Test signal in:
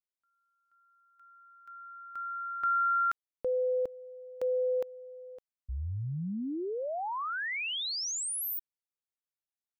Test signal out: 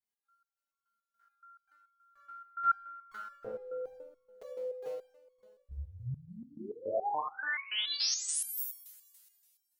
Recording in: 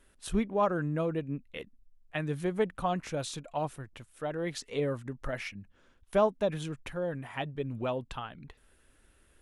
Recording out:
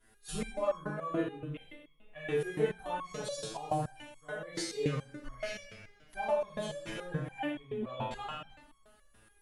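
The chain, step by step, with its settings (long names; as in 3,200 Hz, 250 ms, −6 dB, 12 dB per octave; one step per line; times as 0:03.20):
coupled-rooms reverb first 0.8 s, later 2.4 s, from −19 dB, DRR −9.5 dB
step-sequenced resonator 7 Hz 110–1,100 Hz
level +3 dB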